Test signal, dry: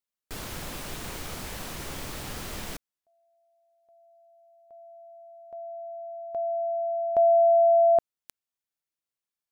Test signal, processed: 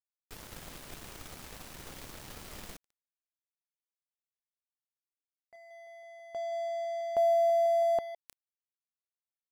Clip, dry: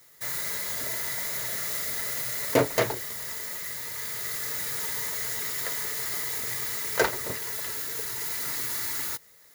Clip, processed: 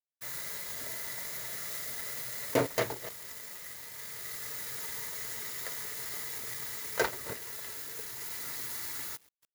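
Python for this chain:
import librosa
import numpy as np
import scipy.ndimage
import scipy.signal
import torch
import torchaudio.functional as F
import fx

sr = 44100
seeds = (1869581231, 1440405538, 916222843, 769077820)

y = fx.reverse_delay(x, sr, ms=163, wet_db=-13.0)
y = np.sign(y) * np.maximum(np.abs(y) - 10.0 ** (-39.5 / 20.0), 0.0)
y = F.gain(torch.from_numpy(y), -5.0).numpy()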